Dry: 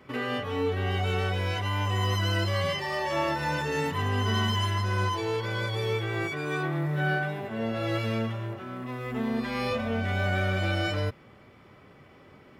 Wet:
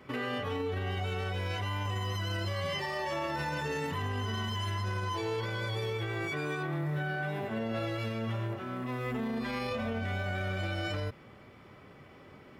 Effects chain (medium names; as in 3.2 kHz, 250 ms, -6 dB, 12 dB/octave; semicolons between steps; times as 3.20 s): peak limiter -26 dBFS, peak gain reduction 11 dB